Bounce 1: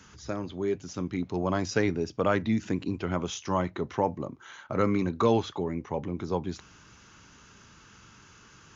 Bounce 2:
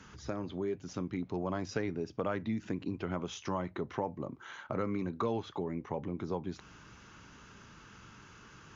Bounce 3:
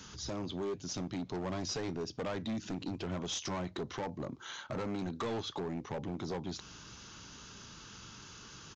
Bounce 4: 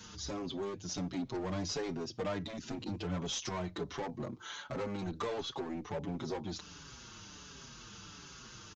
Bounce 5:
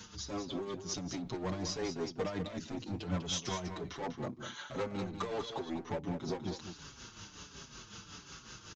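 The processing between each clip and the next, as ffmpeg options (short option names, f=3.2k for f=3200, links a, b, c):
-af "lowpass=f=3.1k:p=1,equalizer=f=84:w=7.6:g=-5.5,acompressor=threshold=-36dB:ratio=2.5,volume=1dB"
-af "highshelf=f=2.9k:t=q:w=1.5:g=8,aresample=16000,asoftclip=type=hard:threshold=-34.5dB,aresample=44100,volume=1.5dB"
-filter_complex "[0:a]asplit=2[a][b];[b]adelay=6,afreqshift=-1.4[c];[a][c]amix=inputs=2:normalize=1,volume=3dB"
-af "tremolo=f=5.4:d=0.63,aecho=1:1:197:0.376,volume=2.5dB"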